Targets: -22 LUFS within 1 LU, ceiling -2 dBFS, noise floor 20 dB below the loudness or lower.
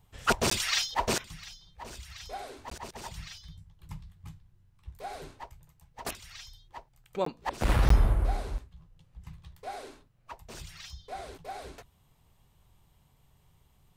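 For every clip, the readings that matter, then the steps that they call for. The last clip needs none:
dropouts 4; longest dropout 14 ms; loudness -32.0 LUFS; peak level -11.5 dBFS; loudness target -22.0 LUFS
-> interpolate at 0.50/2.70/7.25/7.89 s, 14 ms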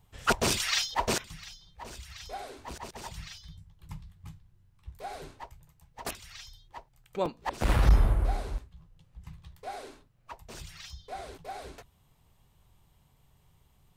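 dropouts 0; loudness -32.0 LUFS; peak level -10.0 dBFS; loudness target -22.0 LUFS
-> trim +10 dB; peak limiter -2 dBFS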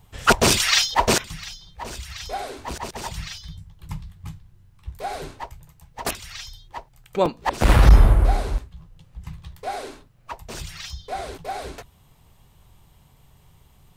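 loudness -22.0 LUFS; peak level -2.0 dBFS; noise floor -56 dBFS

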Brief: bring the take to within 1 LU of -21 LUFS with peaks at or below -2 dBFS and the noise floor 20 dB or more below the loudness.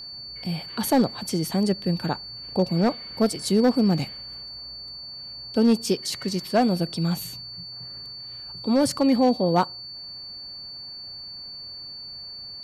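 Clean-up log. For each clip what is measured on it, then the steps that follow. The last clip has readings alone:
clipped samples 0.4%; clipping level -12.5 dBFS; steady tone 4.5 kHz; tone level -36 dBFS; loudness -26.0 LUFS; peak level -12.5 dBFS; loudness target -21.0 LUFS
-> clip repair -12.5 dBFS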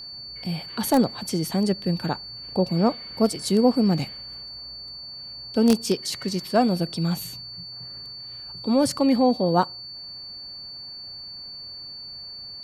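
clipped samples 0.0%; steady tone 4.5 kHz; tone level -36 dBFS
-> band-stop 4.5 kHz, Q 30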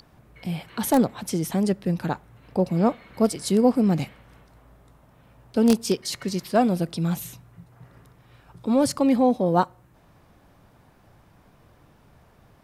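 steady tone not found; loudness -23.5 LUFS; peak level -3.5 dBFS; loudness target -21.0 LUFS
-> trim +2.5 dB; peak limiter -2 dBFS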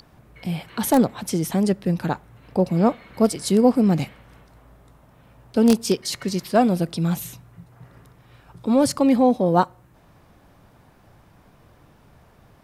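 loudness -21.0 LUFS; peak level -2.0 dBFS; noise floor -55 dBFS

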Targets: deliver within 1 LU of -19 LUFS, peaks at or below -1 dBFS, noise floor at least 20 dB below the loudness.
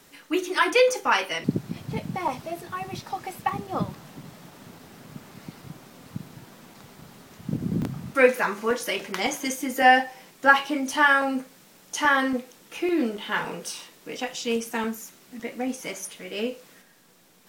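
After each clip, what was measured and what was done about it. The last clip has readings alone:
dropouts 5; longest dropout 1.9 ms; loudness -25.0 LUFS; peak level -2.5 dBFS; loudness target -19.0 LUFS
-> interpolate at 3.49/4.26/7.82/9.41/14.38 s, 1.9 ms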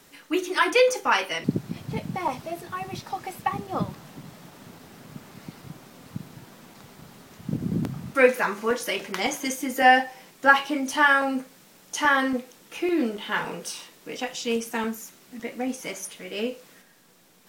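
dropouts 0; loudness -25.0 LUFS; peak level -2.5 dBFS; loudness target -19.0 LUFS
-> trim +6 dB; peak limiter -1 dBFS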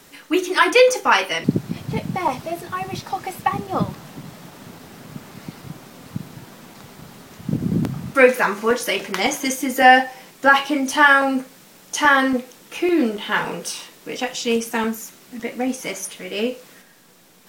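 loudness -19.5 LUFS; peak level -1.0 dBFS; noise floor -49 dBFS

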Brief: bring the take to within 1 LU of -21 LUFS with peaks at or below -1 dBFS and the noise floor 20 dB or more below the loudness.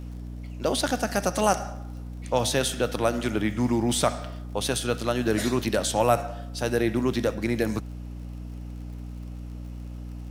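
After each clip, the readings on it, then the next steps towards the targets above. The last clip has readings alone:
tick rate 45 per s; hum 60 Hz; highest harmonic 300 Hz; hum level -34 dBFS; loudness -26.0 LUFS; peak level -7.0 dBFS; loudness target -21.0 LUFS
-> de-click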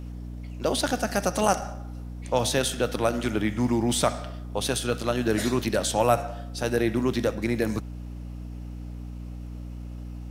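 tick rate 1.1 per s; hum 60 Hz; highest harmonic 300 Hz; hum level -34 dBFS
-> de-hum 60 Hz, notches 5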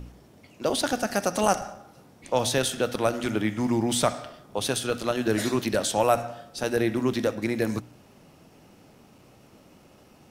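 hum not found; loudness -26.5 LUFS; peak level -7.0 dBFS; loudness target -21.0 LUFS
-> trim +5.5 dB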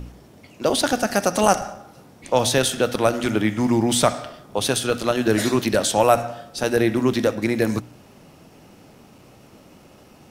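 loudness -21.0 LUFS; peak level -1.5 dBFS; noise floor -49 dBFS

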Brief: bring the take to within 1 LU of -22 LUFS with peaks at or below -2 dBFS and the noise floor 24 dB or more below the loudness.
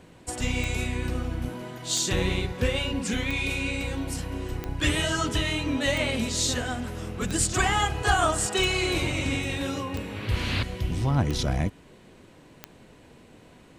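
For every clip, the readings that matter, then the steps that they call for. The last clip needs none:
clicks found 10; loudness -27.0 LUFS; peak level -9.0 dBFS; loudness target -22.0 LUFS
-> de-click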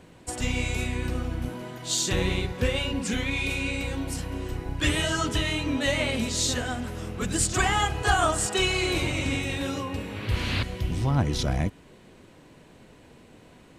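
clicks found 0; loudness -27.0 LUFS; peak level -9.0 dBFS; loudness target -22.0 LUFS
-> trim +5 dB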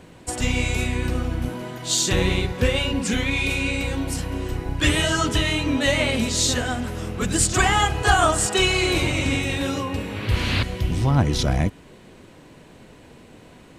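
loudness -22.0 LUFS; peak level -4.0 dBFS; noise floor -48 dBFS

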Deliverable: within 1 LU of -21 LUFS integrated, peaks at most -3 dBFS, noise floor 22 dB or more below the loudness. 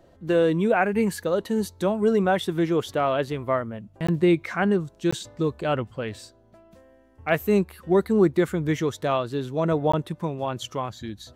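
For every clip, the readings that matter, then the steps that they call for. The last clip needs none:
dropouts 3; longest dropout 15 ms; loudness -24.5 LUFS; peak level -7.5 dBFS; loudness target -21.0 LUFS
-> interpolate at 4.07/5.11/9.92 s, 15 ms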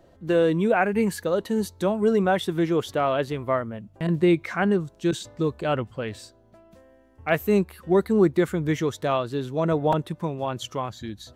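dropouts 0; loudness -24.5 LUFS; peak level -7.5 dBFS; loudness target -21.0 LUFS
-> trim +3.5 dB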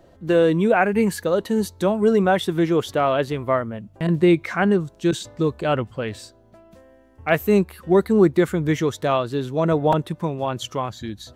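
loudness -21.0 LUFS; peak level -4.0 dBFS; noise floor -53 dBFS

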